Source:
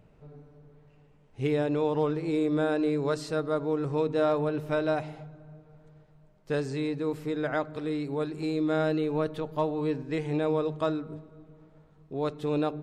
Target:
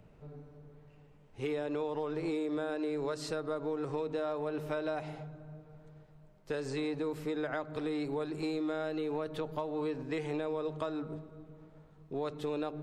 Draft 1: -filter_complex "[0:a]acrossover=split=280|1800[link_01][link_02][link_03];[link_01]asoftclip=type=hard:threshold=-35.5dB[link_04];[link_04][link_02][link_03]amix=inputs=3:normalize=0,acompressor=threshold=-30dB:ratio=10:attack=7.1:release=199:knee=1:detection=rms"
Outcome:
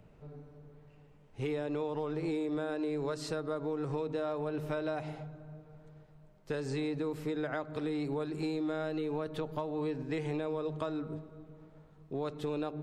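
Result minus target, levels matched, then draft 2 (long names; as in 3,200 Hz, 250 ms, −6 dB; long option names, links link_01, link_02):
hard clipping: distortion −5 dB
-filter_complex "[0:a]acrossover=split=280|1800[link_01][link_02][link_03];[link_01]asoftclip=type=hard:threshold=-43dB[link_04];[link_04][link_02][link_03]amix=inputs=3:normalize=0,acompressor=threshold=-30dB:ratio=10:attack=7.1:release=199:knee=1:detection=rms"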